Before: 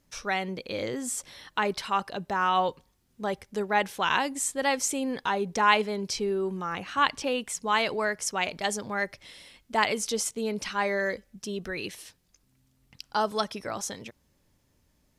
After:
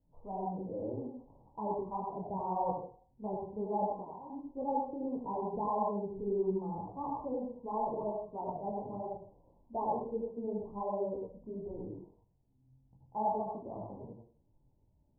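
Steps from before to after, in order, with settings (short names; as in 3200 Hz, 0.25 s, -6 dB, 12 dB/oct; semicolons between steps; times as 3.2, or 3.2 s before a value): 3.82–4.3 compressor 6:1, threshold -34 dBFS, peak gain reduction 13.5 dB; steep low-pass 990 Hz 96 dB/oct; low shelf 170 Hz +6.5 dB; reverb RT60 0.45 s, pre-delay 73 ms, DRR 0 dB; detuned doubles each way 53 cents; gain -5.5 dB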